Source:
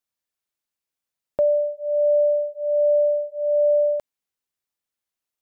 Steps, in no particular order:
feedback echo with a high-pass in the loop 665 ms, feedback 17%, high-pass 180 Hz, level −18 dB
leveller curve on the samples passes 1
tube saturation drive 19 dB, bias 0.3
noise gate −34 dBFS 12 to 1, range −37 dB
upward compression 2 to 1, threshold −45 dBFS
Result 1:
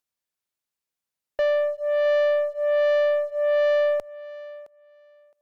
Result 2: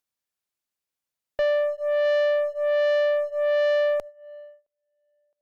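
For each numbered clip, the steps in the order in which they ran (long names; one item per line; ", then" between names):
tube saturation, then leveller curve on the samples, then noise gate, then upward compression, then feedback echo with a high-pass in the loop
leveller curve on the samples, then feedback echo with a high-pass in the loop, then tube saturation, then noise gate, then upward compression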